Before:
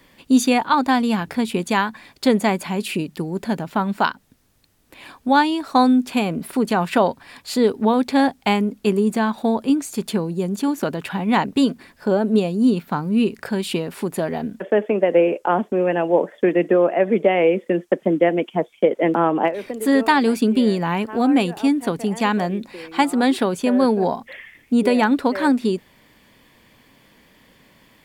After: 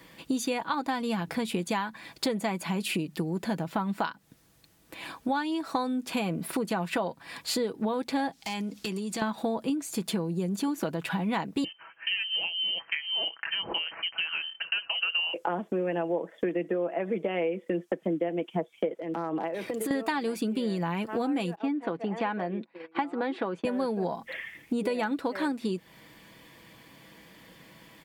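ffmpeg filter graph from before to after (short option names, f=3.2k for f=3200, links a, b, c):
-filter_complex "[0:a]asettb=1/sr,asplit=3[a][b][c];[a]atrim=end=8.324[d];[b]atrim=start=8.32:end=9.22,asetpts=PTS-STARTPTS,afade=t=in:d=0.004:c=qsin,afade=t=out:st=0.896:d=0.004:c=qsin,equalizer=f=5k:t=o:w=2.1:g=13.5,acompressor=threshold=-34dB:ratio=3:attack=3.2:release=140:knee=1:detection=peak,aeval=exprs='0.0708*(abs(mod(val(0)/0.0708+3,4)-2)-1)':c=same[e];[c]atrim=start=9.216[f];[d][e]acrossfade=d=0.004:c1=hsin:c2=qsin[g];[g][f]acrossfade=d=0.004:c1=qsin:c2=hsin,asettb=1/sr,asplit=3[h][i][j];[h]atrim=end=11.644[k];[i]atrim=start=11.64:end=15.34,asetpts=PTS-STARTPTS,afade=t=in:d=0.004:c=qsin,afade=t=out:st=3.696:d=0.004:c=qsin,highpass=f=740:p=1,lowpass=f=2.8k:t=q:w=0.5098,lowpass=f=2.8k:t=q:w=0.6013,lowpass=f=2.8k:t=q:w=0.9,lowpass=f=2.8k:t=q:w=2.563,afreqshift=-3300[l];[j]atrim=start=15.336[m];[k][l]acrossfade=d=0.004:c1=hsin:c2=qsin[n];[n][m]acrossfade=d=0.004:c1=qsin:c2=hsin,asettb=1/sr,asplit=3[o][p][q];[o]atrim=end=18.994[r];[p]atrim=start=18.99:end=19.91,asetpts=PTS-STARTPTS,afade=t=in:d=0.004:c=qsin,afade=t=out:st=0.916:d=0.004:c=qsin,acompressor=threshold=-26dB:ratio=12:attack=3.2:release=140:knee=1:detection=peak,volume=22dB,asoftclip=hard,volume=-22dB[s];[q]atrim=start=19.906[t];[r][s]acrossfade=d=0.004:c1=hsin:c2=qsin[u];[u][t]acrossfade=d=0.004:c1=qsin:c2=hsin,asettb=1/sr,asplit=3[v][w][x];[v]atrim=end=21.554[y];[w]atrim=start=21.55:end=23.65,asetpts=PTS-STARTPTS,afade=t=in:d=0.004:c=qsin,afade=t=out:st=2.096:d=0.004:c=qsin,agate=range=-23dB:threshold=-34dB:ratio=16:release=100:detection=peak,highpass=260,lowpass=2.2k[z];[x]atrim=start=23.646[aa];[y][z]acrossfade=d=0.004:c1=hsin:c2=qsin[ab];[ab][aa]acrossfade=d=0.004:c1=qsin:c2=hsin,highpass=51,aecho=1:1:6.1:0.44,acompressor=threshold=-27dB:ratio=6"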